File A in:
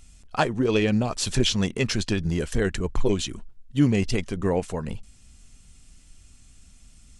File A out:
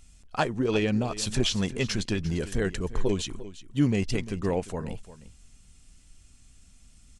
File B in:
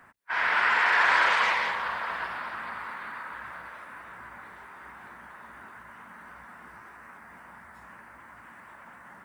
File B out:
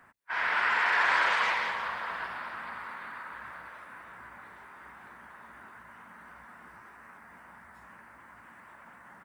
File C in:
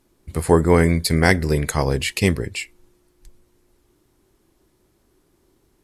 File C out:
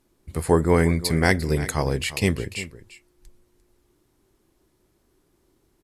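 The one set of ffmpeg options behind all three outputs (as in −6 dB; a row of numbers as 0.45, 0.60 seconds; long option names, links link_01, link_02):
-af "aecho=1:1:348:0.168,volume=-3.5dB"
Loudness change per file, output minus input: −3.5, −3.5, −3.5 LU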